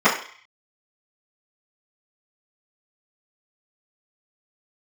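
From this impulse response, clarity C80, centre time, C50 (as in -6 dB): 11.0 dB, 27 ms, 7.5 dB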